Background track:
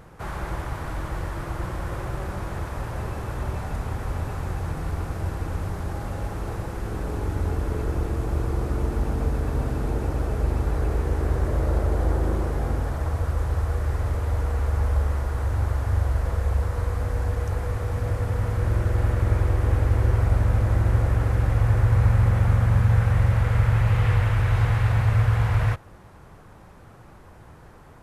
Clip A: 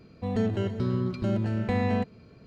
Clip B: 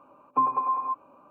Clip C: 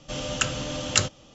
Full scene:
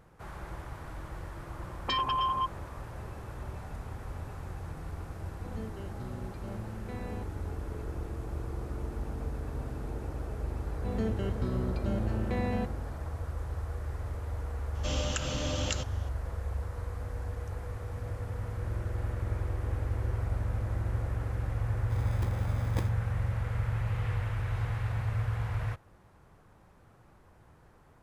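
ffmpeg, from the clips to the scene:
ffmpeg -i bed.wav -i cue0.wav -i cue1.wav -i cue2.wav -filter_complex "[1:a]asplit=2[link_01][link_02];[3:a]asplit=2[link_03][link_04];[0:a]volume=-11.5dB[link_05];[2:a]aeval=exprs='0.237*sin(PI/2*3.55*val(0)/0.237)':channel_layout=same[link_06];[link_03]acompressor=threshold=-27dB:ratio=6:attack=3.2:release=140:knee=1:detection=peak[link_07];[link_04]acrusher=samples=31:mix=1:aa=0.000001[link_08];[link_06]atrim=end=1.3,asetpts=PTS-STARTPTS,volume=-13.5dB,afade=type=in:duration=0.004:curve=hsin,afade=type=out:start_time=1.296:duration=0.004:curve=hsin,adelay=1520[link_09];[link_01]atrim=end=2.46,asetpts=PTS-STARTPTS,volume=-15.5dB,afade=type=in:duration=0.004:curve=hsin,afade=type=out:start_time=2.456:duration=0.004:curve=hsin,adelay=5200[link_10];[link_02]atrim=end=2.46,asetpts=PTS-STARTPTS,volume=-6dB,afade=type=in:duration=0.004:curve=hsin,afade=type=out:start_time=2.456:duration=0.004:curve=hsin,adelay=10620[link_11];[link_07]atrim=end=1.34,asetpts=PTS-STARTPTS,volume=-2dB,afade=type=in:duration=0.004:curve=hsin,afade=type=out:start_time=1.336:duration=0.004:curve=hsin,adelay=14750[link_12];[link_08]atrim=end=1.34,asetpts=PTS-STARTPTS,volume=-14.5dB,afade=type=in:duration=0.004:curve=hsin,afade=type=out:start_time=1.336:duration=0.004:curve=hsin,adelay=21810[link_13];[link_05][link_09][link_10][link_11][link_12][link_13]amix=inputs=6:normalize=0" out.wav

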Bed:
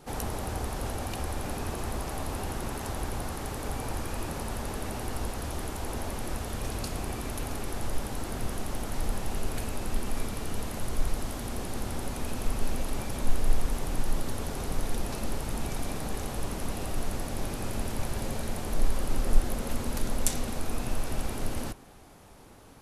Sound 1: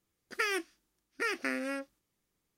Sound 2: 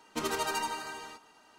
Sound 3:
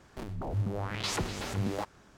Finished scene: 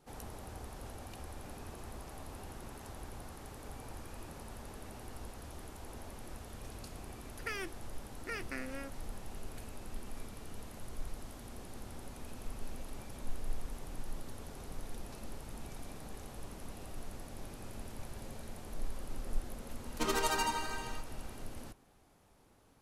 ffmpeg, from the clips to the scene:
ffmpeg -i bed.wav -i cue0.wav -i cue1.wav -filter_complex "[0:a]volume=-13.5dB[link_01];[1:a]atrim=end=2.57,asetpts=PTS-STARTPTS,volume=-8.5dB,afade=type=in:duration=0.004:curve=hsin,afade=type=out:start_time=2.566:duration=0.004:curve=hsin,adelay=7070[link_02];[2:a]atrim=end=1.58,asetpts=PTS-STARTPTS,volume=-0.5dB,afade=type=in:duration=0.004:curve=hsin,afade=type=out:start_time=1.576:duration=0.004:curve=hsin,adelay=19840[link_03];[link_01][link_02][link_03]amix=inputs=3:normalize=0" out.wav

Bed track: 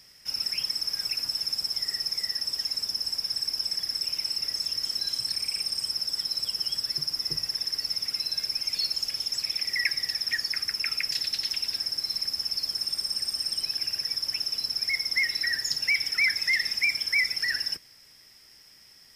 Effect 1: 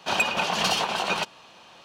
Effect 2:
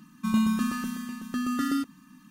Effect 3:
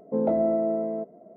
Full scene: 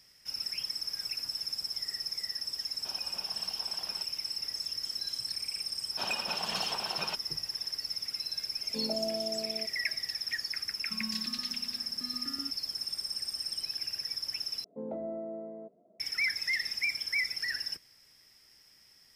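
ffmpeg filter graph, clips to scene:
ffmpeg -i bed.wav -i cue0.wav -i cue1.wav -i cue2.wav -filter_complex "[1:a]asplit=2[link_01][link_02];[3:a]asplit=2[link_03][link_04];[0:a]volume=-6.5dB[link_05];[link_01]acompressor=threshold=-42dB:ratio=2.5:attack=37:release=36:knee=1:detection=peak[link_06];[link_03]aecho=1:1:4.8:0.65[link_07];[link_05]asplit=2[link_08][link_09];[link_08]atrim=end=14.644[link_10];[link_04]atrim=end=1.36,asetpts=PTS-STARTPTS,volume=-14.5dB[link_11];[link_09]atrim=start=15.996[link_12];[link_06]atrim=end=1.84,asetpts=PTS-STARTPTS,volume=-15.5dB,afade=type=in:duration=0.004:curve=hsin,afade=type=out:start_time=1.836:duration=0.004:curve=hsin,adelay=2790[link_13];[link_02]atrim=end=1.84,asetpts=PTS-STARTPTS,volume=-12dB,afade=type=in:duration=0.004:curve=hsin,afade=type=out:start_time=1.836:duration=0.004:curve=hsin,adelay=5910[link_14];[link_07]atrim=end=1.36,asetpts=PTS-STARTPTS,volume=-14.5dB,afade=type=in:duration=0.004:curve=hsin,afade=type=out:start_time=1.356:duration=0.004:curve=hsin,adelay=8620[link_15];[2:a]atrim=end=2.3,asetpts=PTS-STARTPTS,volume=-17.5dB,afade=type=in:duration=0.004:curve=hsin,afade=type=out:start_time=2.296:duration=0.004:curve=hsin,adelay=10670[link_16];[link_10][link_11]acrossfade=duration=0.004:curve1=hsin:curve2=hsin[link_17];[link_17][link_12]acrossfade=duration=0.004:curve1=hsin:curve2=hsin[link_18];[link_18][link_13][link_14][link_15][link_16]amix=inputs=5:normalize=0" out.wav

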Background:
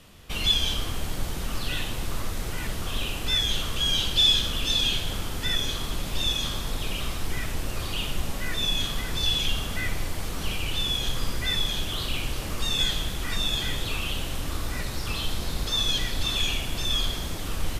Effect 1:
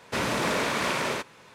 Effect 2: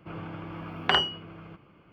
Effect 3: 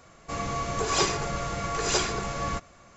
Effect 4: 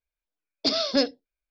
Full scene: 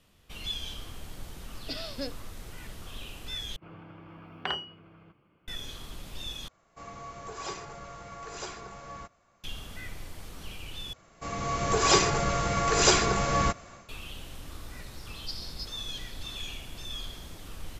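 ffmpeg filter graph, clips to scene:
ffmpeg -i bed.wav -i cue0.wav -i cue1.wav -i cue2.wav -i cue3.wav -filter_complex "[4:a]asplit=2[link_01][link_02];[3:a]asplit=2[link_03][link_04];[0:a]volume=-12.5dB[link_05];[link_03]equalizer=frequency=940:width_type=o:width=1.8:gain=4.5[link_06];[link_04]dynaudnorm=framelen=400:gausssize=3:maxgain=11.5dB[link_07];[link_02]asuperpass=centerf=5400:order=4:qfactor=2[link_08];[link_05]asplit=4[link_09][link_10][link_11][link_12];[link_09]atrim=end=3.564[link_13];[2:a]atrim=end=1.92,asetpts=PTS-STARTPTS,volume=-9.5dB[link_14];[link_10]atrim=start=5.476:end=6.484[link_15];[link_06]atrim=end=2.96,asetpts=PTS-STARTPTS,volume=-15.5dB[link_16];[link_11]atrim=start=9.436:end=10.934[link_17];[link_07]atrim=end=2.96,asetpts=PTS-STARTPTS,volume=-5dB[link_18];[link_12]atrim=start=13.886[link_19];[link_01]atrim=end=1.5,asetpts=PTS-STARTPTS,volume=-14dB,afade=type=in:duration=0.004:curve=hsin,afade=type=out:start_time=1.496:duration=0.004:curve=hsin,adelay=1040[link_20];[link_08]atrim=end=1.5,asetpts=PTS-STARTPTS,volume=-12dB,afade=type=in:duration=0.004:curve=hsin,afade=type=out:start_time=1.496:duration=0.004:curve=hsin,adelay=14620[link_21];[link_13][link_14]acrossfade=duration=0.004:curve1=hsin:curve2=hsin[link_22];[link_22][link_15]acrossfade=duration=0.004:curve1=hsin:curve2=hsin[link_23];[link_23][link_16]acrossfade=duration=0.004:curve1=hsin:curve2=hsin[link_24];[link_24][link_17]acrossfade=duration=0.004:curve1=hsin:curve2=hsin[link_25];[link_25][link_18]acrossfade=duration=0.004:curve1=hsin:curve2=hsin[link_26];[link_26][link_19]acrossfade=duration=0.004:curve1=hsin:curve2=hsin[link_27];[link_27][link_20][link_21]amix=inputs=3:normalize=0" out.wav

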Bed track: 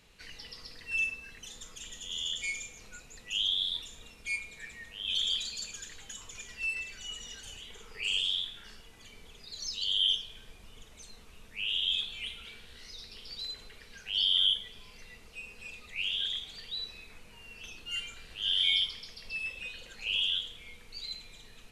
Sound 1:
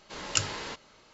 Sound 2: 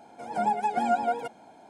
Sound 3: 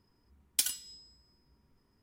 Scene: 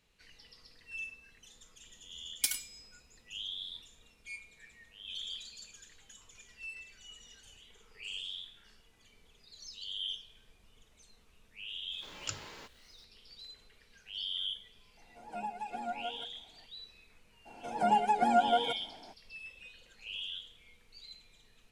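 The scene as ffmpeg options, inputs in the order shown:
ffmpeg -i bed.wav -i cue0.wav -i cue1.wav -i cue2.wav -filter_complex "[2:a]asplit=2[link_01][link_02];[0:a]volume=-11dB[link_03];[1:a]acrusher=bits=8:mix=0:aa=0.000001[link_04];[link_01]bandreject=frequency=60:width_type=h:width=6,bandreject=frequency=120:width_type=h:width=6,bandreject=frequency=180:width_type=h:width=6,bandreject=frequency=240:width_type=h:width=6,bandreject=frequency=300:width_type=h:width=6,bandreject=frequency=360:width_type=h:width=6,bandreject=frequency=420:width_type=h:width=6,bandreject=frequency=480:width_type=h:width=6,bandreject=frequency=540:width_type=h:width=6[link_05];[3:a]atrim=end=2.02,asetpts=PTS-STARTPTS,volume=-2dB,afade=type=in:duration=0.004:curve=hsin,afade=type=out:start_time=2.016:duration=0.004:curve=hsin,adelay=1850[link_06];[link_04]atrim=end=1.13,asetpts=PTS-STARTPTS,volume=-12dB,afade=type=in:duration=0.004:curve=hsin,afade=type=out:start_time=1.126:duration=0.004:curve=hsin,adelay=11920[link_07];[link_05]atrim=end=1.69,asetpts=PTS-STARTPTS,volume=-13.5dB,afade=type=in:duration=0.004:curve=hsin,afade=type=out:start_time=1.686:duration=0.004:curve=hsin,adelay=14970[link_08];[link_02]atrim=end=1.69,asetpts=PTS-STARTPTS,volume=-1dB,afade=type=in:duration=0.02,afade=type=out:start_time=1.67:duration=0.02,adelay=17450[link_09];[link_03][link_06][link_07][link_08][link_09]amix=inputs=5:normalize=0" out.wav

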